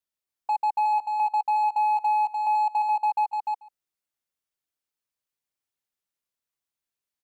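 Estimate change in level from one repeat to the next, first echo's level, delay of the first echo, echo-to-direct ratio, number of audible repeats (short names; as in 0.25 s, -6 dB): no steady repeat, -20.5 dB, 0.141 s, -3.5 dB, 3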